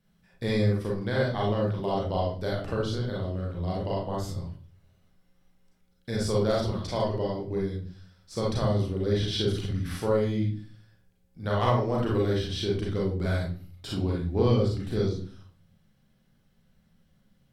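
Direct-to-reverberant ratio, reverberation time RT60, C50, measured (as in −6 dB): −3.5 dB, 0.45 s, 2.5 dB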